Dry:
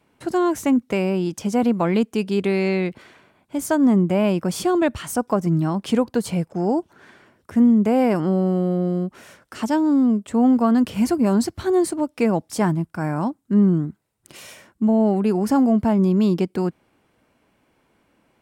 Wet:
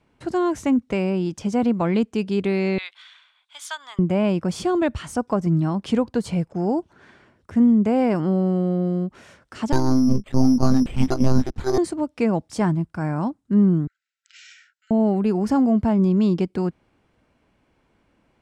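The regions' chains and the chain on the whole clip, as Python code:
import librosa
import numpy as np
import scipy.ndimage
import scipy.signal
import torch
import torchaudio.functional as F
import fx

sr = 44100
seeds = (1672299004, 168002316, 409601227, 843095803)

y = fx.chain(x, sr, fx.highpass(hz=1100.0, slope=24),
    fx.peak_eq(hz=3500.0, db=15.0, octaves=0.4), at=(2.78, 3.99))
y = fx.chain(y, sr, fx.lpc_monotone(seeds[0], pitch_hz=130.0, order=16),
    fx.resample_bad(factor=8, down='none', up='hold'), at=(9.72, 11.78))
y = fx.chain(y, sr, fx.brickwall_bandpass(low_hz=1300.0, high_hz=8000.0),
    fx.high_shelf(hz=5600.0, db=-2.5), at=(13.87, 14.91))
y = scipy.signal.sosfilt(scipy.signal.butter(2, 7300.0, 'lowpass', fs=sr, output='sos'), y)
y = fx.low_shelf(y, sr, hz=92.0, db=11.5)
y = F.gain(torch.from_numpy(y), -2.5).numpy()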